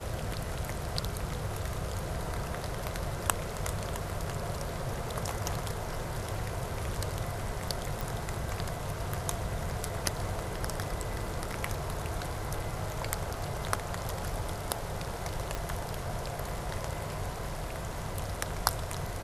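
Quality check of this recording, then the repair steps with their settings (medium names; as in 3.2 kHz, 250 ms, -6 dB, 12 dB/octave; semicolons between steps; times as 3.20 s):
8.01 s: pop
15.55 s: pop -18 dBFS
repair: de-click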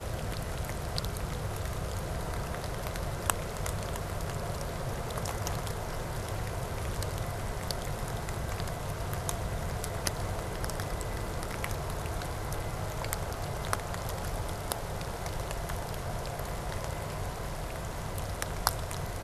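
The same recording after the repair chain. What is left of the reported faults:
15.55 s: pop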